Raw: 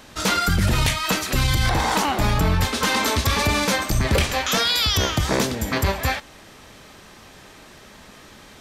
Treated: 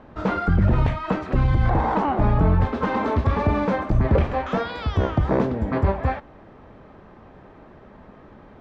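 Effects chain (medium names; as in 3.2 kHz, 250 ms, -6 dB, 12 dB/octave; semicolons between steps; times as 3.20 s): low-pass 1 kHz 12 dB/octave; trim +2 dB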